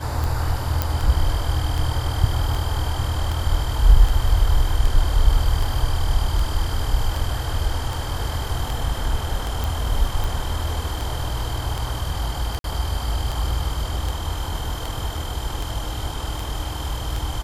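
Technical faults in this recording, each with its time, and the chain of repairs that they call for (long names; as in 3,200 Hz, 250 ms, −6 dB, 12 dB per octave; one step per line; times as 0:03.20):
scratch tick 78 rpm
0:00.82: click
0:09.64: click
0:12.59–0:12.64: drop-out 52 ms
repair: click removal
repair the gap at 0:12.59, 52 ms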